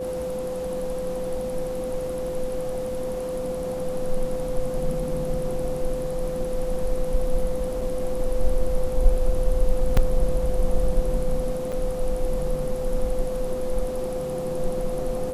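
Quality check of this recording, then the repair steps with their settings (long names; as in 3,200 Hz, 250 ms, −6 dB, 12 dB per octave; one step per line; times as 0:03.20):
whistle 510 Hz −27 dBFS
0:07.81: drop-out 4.5 ms
0:09.97: drop-out 3.2 ms
0:11.72–0:11.73: drop-out 6.1 ms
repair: notch filter 510 Hz, Q 30
repair the gap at 0:07.81, 4.5 ms
repair the gap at 0:09.97, 3.2 ms
repair the gap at 0:11.72, 6.1 ms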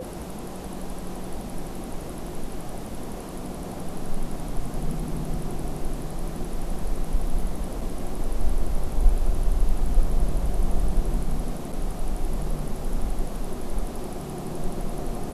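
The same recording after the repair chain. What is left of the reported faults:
none of them is left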